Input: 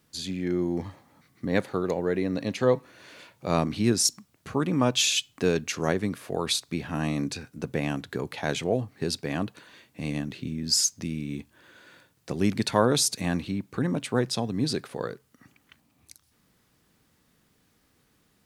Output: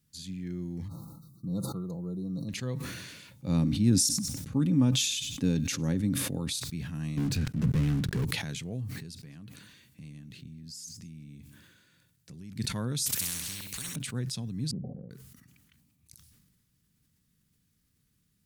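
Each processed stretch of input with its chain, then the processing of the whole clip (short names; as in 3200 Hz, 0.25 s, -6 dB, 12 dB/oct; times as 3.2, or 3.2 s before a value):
0.88–2.49 brick-wall FIR band-stop 1400–3600 Hz + bell 4900 Hz -8.5 dB 2.6 oct + comb 6 ms, depth 50%
3.31–6.53 low shelf 350 Hz +5.5 dB + small resonant body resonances 280/530/830/3600 Hz, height 11 dB, ringing for 50 ms + thin delay 97 ms, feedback 30%, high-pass 1500 Hz, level -22 dB
7.17–8.25 LPF 1200 Hz 6 dB/oct + sample leveller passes 5
9–12.56 compressor 3:1, threshold -38 dBFS + echo 0.208 s -22 dB
13.06–13.96 high shelf 8000 Hz +7 dB + flutter echo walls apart 11 m, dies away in 0.42 s + spectral compressor 10:1
14.71–15.11 rippled Chebyshev low-pass 770 Hz, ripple 9 dB + compressor 3:1, threshold -48 dBFS
whole clip: EQ curve 170 Hz 0 dB, 340 Hz -13 dB, 720 Hz -20 dB, 1600 Hz -12 dB, 10000 Hz -2 dB; sustainer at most 36 dB/s; gain -3 dB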